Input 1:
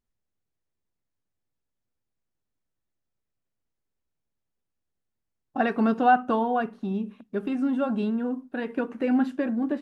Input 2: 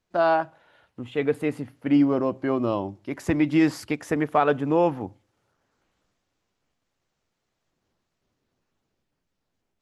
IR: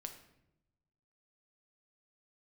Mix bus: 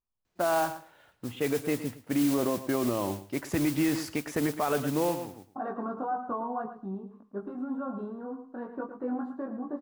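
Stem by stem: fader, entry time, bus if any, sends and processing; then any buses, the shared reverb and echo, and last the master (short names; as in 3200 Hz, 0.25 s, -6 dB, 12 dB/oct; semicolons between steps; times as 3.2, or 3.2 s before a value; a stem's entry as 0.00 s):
-6.5 dB, 0.00 s, no send, echo send -10 dB, resonant high shelf 1700 Hz -14 dB, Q 3; limiter -15.5 dBFS, peak gain reduction 10 dB; chorus 1.8 Hz, delay 18.5 ms, depth 2.5 ms
-1.0 dB, 0.25 s, no send, echo send -16 dB, modulation noise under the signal 14 dB; auto duck -18 dB, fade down 0.75 s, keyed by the first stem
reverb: off
echo: feedback echo 0.111 s, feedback 16%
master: limiter -18 dBFS, peak gain reduction 9 dB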